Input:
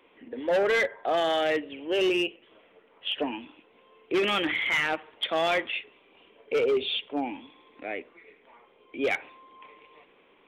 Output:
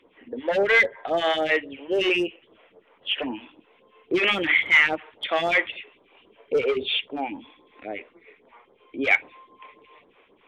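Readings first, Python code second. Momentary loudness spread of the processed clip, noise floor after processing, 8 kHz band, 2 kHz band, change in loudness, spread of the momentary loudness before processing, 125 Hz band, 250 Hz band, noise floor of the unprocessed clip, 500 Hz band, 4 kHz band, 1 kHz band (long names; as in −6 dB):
19 LU, −61 dBFS, can't be measured, +8.0 dB, +5.0 dB, 12 LU, +2.5 dB, +1.5 dB, −61 dBFS, +1.0 dB, +3.0 dB, +1.5 dB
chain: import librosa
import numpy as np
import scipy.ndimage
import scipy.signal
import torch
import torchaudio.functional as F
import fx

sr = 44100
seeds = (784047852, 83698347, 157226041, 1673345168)

y = fx.phaser_stages(x, sr, stages=2, low_hz=120.0, high_hz=2600.0, hz=3.7, feedback_pct=20)
y = fx.lowpass(y, sr, hz=3500.0, slope=6)
y = fx.dynamic_eq(y, sr, hz=2200.0, q=2.0, threshold_db=-44.0, ratio=4.0, max_db=7)
y = F.gain(torch.from_numpy(y), 4.5).numpy()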